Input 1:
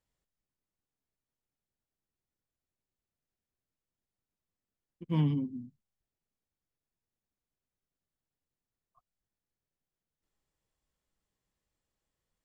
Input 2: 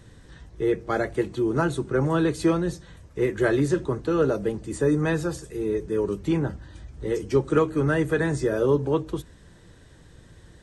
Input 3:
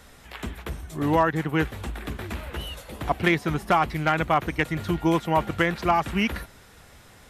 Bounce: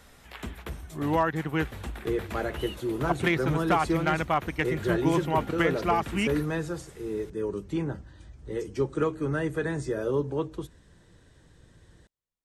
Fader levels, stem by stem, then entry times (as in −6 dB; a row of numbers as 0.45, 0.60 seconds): −10.0, −6.0, −4.0 decibels; 0.00, 1.45, 0.00 seconds